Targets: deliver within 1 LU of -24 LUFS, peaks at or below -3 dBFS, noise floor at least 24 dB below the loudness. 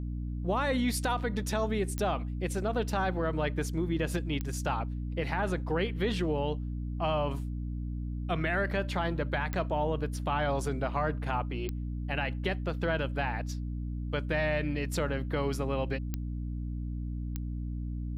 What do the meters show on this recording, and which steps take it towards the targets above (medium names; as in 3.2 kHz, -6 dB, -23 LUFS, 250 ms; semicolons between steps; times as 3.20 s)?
clicks found 6; hum 60 Hz; highest harmonic 300 Hz; hum level -32 dBFS; loudness -32.5 LUFS; peak level -17.5 dBFS; loudness target -24.0 LUFS
-> de-click; de-hum 60 Hz, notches 5; trim +8.5 dB